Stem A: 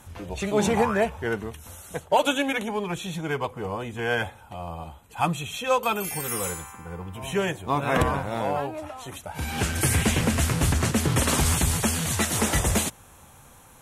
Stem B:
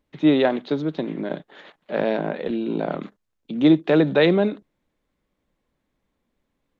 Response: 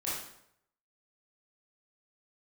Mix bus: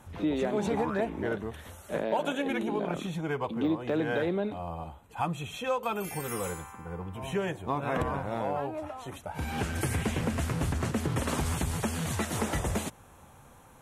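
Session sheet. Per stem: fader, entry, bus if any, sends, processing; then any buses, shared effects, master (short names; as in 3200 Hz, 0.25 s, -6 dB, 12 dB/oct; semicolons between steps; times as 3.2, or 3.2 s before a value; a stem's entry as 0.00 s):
-0.5 dB, 0.00 s, no send, high shelf 2200 Hz -9.5 dB
-5.5 dB, 0.00 s, no send, de-esser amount 95%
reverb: off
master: low shelf 120 Hz -3.5 dB; compressor 2.5:1, threshold -28 dBFS, peak gain reduction 8 dB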